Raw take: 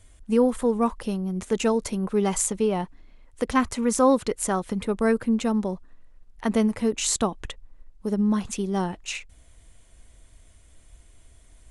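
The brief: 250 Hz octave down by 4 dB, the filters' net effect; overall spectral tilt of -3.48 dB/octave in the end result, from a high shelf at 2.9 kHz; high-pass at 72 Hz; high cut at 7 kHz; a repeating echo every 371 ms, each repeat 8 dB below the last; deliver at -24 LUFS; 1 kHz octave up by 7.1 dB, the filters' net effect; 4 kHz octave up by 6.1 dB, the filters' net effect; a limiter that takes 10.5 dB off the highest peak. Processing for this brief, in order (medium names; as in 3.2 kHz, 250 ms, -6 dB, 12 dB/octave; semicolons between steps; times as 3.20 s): high-pass 72 Hz; low-pass 7 kHz; peaking EQ 250 Hz -5 dB; peaking EQ 1 kHz +8 dB; treble shelf 2.9 kHz +5.5 dB; peaking EQ 4 kHz +3.5 dB; peak limiter -14 dBFS; feedback delay 371 ms, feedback 40%, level -8 dB; trim +2 dB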